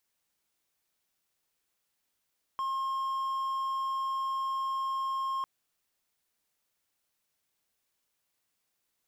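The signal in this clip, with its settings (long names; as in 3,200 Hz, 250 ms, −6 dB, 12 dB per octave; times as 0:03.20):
tone triangle 1,070 Hz −27.5 dBFS 2.85 s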